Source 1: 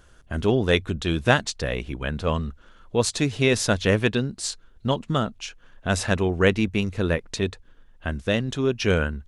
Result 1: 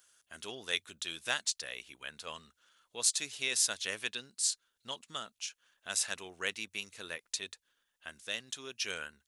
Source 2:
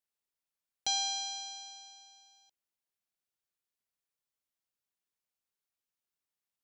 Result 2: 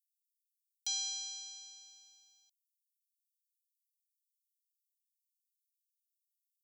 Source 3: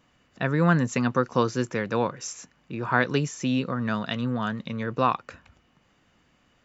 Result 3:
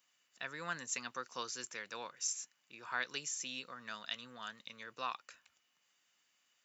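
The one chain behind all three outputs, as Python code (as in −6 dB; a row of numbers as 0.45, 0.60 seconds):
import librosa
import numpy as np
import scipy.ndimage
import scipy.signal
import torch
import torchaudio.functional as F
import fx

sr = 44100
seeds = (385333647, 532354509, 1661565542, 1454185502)

y = np.diff(x, prepend=0.0)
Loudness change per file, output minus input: −11.0, −4.0, −15.5 LU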